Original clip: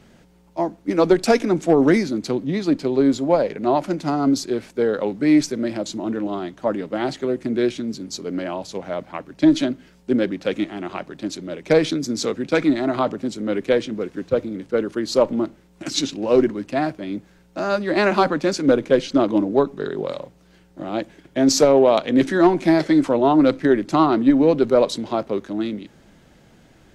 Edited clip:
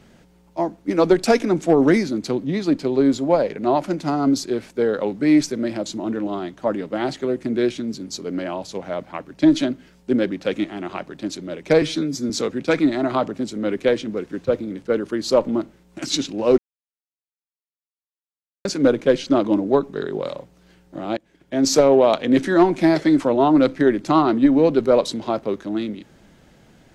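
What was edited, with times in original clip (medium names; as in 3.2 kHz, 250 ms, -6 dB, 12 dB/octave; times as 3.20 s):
11.82–12.14 s: stretch 1.5×
16.42–18.49 s: mute
21.01–21.63 s: fade in, from -21.5 dB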